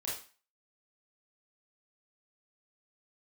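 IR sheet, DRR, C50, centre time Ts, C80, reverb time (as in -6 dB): -6.5 dB, 3.5 dB, 42 ms, 10.0 dB, 0.35 s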